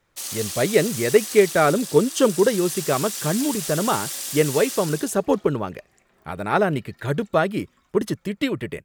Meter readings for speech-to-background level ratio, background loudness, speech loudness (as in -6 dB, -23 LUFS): 7.0 dB, -29.0 LUFS, -22.0 LUFS